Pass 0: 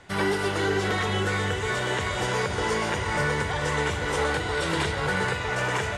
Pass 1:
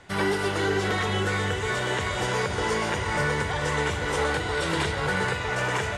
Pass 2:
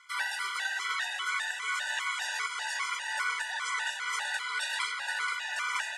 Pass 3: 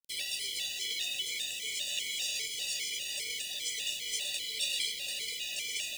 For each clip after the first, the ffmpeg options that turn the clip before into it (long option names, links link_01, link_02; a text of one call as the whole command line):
ffmpeg -i in.wav -af anull out.wav
ffmpeg -i in.wav -af "highpass=frequency=1100:width=0.5412,highpass=frequency=1100:width=1.3066,flanger=delay=5.8:depth=9.7:regen=-83:speed=0.39:shape=sinusoidal,afftfilt=real='re*gt(sin(2*PI*2.5*pts/sr)*(1-2*mod(floor(b*sr/1024/490),2)),0)':imag='im*gt(sin(2*PI*2.5*pts/sr)*(1-2*mod(floor(b*sr/1024/490),2)),0)':win_size=1024:overlap=0.75,volume=5.5dB" out.wav
ffmpeg -i in.wav -af "acrusher=bits=7:mix=0:aa=0.000001,asuperstop=centerf=1200:order=8:qfactor=0.57,volume=4.5dB" out.wav